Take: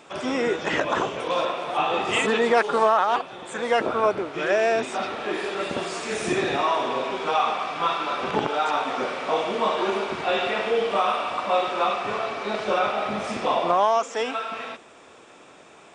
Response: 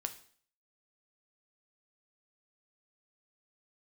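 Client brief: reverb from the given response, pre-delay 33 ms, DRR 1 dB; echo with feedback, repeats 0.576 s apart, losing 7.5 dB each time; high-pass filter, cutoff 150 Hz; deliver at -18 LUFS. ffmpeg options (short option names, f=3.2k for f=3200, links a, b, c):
-filter_complex "[0:a]highpass=150,aecho=1:1:576|1152|1728|2304|2880:0.422|0.177|0.0744|0.0312|0.0131,asplit=2[a][b];[1:a]atrim=start_sample=2205,adelay=33[c];[b][c]afir=irnorm=-1:irlink=0,volume=-0.5dB[d];[a][d]amix=inputs=2:normalize=0,volume=3dB"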